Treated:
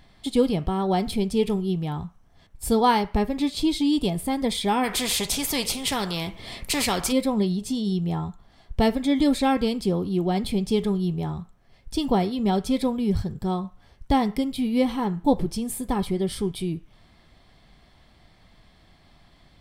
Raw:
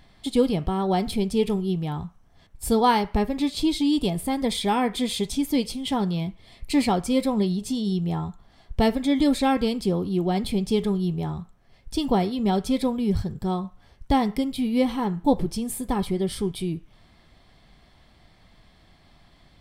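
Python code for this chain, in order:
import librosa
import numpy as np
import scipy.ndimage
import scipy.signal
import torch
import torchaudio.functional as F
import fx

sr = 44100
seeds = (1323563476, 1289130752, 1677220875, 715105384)

y = fx.spectral_comp(x, sr, ratio=2.0, at=(4.83, 7.11), fade=0.02)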